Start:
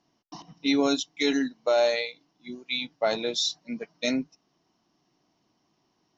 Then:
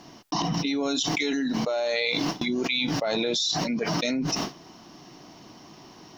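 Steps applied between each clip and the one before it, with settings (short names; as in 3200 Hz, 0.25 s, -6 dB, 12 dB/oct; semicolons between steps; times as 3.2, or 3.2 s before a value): gate with hold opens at -55 dBFS; limiter -25.5 dBFS, peak gain reduction 11.5 dB; fast leveller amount 100%; gain +4.5 dB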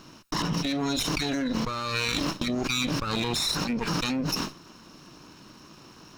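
minimum comb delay 0.74 ms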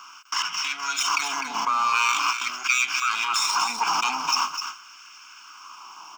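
echo 0.253 s -7.5 dB; LFO high-pass sine 0.44 Hz 810–1700 Hz; fixed phaser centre 2700 Hz, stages 8; gain +7 dB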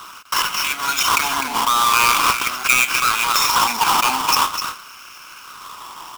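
half-waves squared off; gain +3 dB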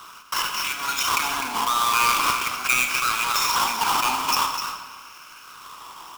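reverb RT60 1.5 s, pre-delay 24 ms, DRR 6 dB; gain -6 dB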